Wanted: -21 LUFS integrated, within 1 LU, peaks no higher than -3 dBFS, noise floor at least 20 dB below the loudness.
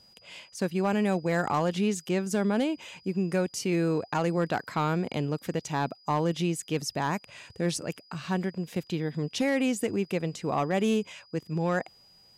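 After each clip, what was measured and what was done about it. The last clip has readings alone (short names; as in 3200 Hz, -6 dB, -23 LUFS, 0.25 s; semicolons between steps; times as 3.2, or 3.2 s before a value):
clipped 0.3%; flat tops at -18.5 dBFS; steady tone 4900 Hz; tone level -56 dBFS; loudness -29.5 LUFS; peak -18.5 dBFS; loudness target -21.0 LUFS
-> clip repair -18.5 dBFS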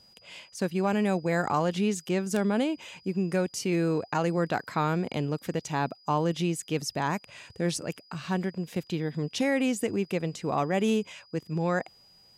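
clipped 0.0%; steady tone 4900 Hz; tone level -56 dBFS
-> notch 4900 Hz, Q 30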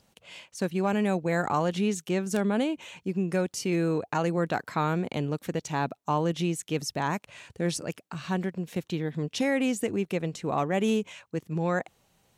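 steady tone none; loudness -29.0 LUFS; peak -11.5 dBFS; loudness target -21.0 LUFS
-> gain +8 dB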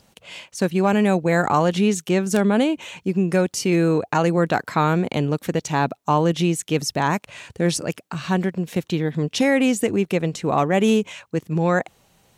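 loudness -21.0 LUFS; peak -3.5 dBFS; noise floor -62 dBFS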